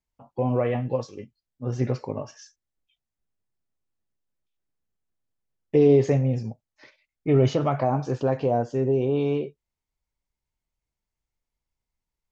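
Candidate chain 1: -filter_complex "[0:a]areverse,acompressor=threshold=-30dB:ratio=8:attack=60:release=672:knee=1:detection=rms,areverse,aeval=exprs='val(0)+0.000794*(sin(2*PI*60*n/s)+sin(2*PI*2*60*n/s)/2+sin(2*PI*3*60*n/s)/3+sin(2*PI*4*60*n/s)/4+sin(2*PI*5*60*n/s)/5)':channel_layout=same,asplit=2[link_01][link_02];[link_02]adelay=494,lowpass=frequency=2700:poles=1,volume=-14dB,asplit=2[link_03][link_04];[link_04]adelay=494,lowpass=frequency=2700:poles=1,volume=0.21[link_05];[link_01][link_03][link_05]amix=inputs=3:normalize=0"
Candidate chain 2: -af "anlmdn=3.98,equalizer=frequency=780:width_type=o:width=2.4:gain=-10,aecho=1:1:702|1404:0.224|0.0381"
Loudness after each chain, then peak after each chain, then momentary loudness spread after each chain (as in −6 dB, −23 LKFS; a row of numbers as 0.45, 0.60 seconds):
−35.0, −29.0 LKFS; −17.5, −14.0 dBFS; 15, 19 LU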